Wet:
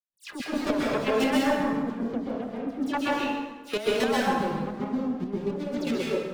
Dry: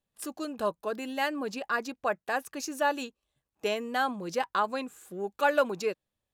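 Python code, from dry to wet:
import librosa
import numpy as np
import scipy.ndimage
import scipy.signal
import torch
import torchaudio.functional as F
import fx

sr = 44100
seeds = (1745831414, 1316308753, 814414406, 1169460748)

y = fx.rider(x, sr, range_db=4, speed_s=0.5)
y = fx.filter_lfo_lowpass(y, sr, shape='square', hz=0.35, low_hz=210.0, high_hz=3200.0, q=1.1)
y = fx.leveller(y, sr, passes=5)
y = fx.dispersion(y, sr, late='lows', ms=96.0, hz=2300.0)
y = fx.chopper(y, sr, hz=7.5, depth_pct=65, duty_pct=30)
y = fx.rev_plate(y, sr, seeds[0], rt60_s=1.3, hf_ratio=0.7, predelay_ms=115, drr_db=-5.5)
y = y * 10.0 ** (-7.0 / 20.0)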